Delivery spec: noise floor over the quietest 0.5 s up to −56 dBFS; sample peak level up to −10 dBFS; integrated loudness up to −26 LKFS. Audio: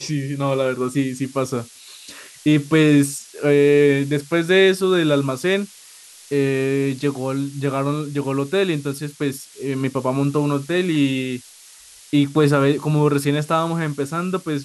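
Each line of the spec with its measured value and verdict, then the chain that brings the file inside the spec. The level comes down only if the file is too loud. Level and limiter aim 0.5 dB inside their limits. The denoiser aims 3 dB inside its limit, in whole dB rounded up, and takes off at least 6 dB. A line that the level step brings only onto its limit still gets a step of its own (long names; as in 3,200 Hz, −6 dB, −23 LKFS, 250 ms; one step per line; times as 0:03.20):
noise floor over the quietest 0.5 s −45 dBFS: out of spec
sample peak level −5.5 dBFS: out of spec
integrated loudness −20.0 LKFS: out of spec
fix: broadband denoise 8 dB, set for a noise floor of −45 dBFS
level −6.5 dB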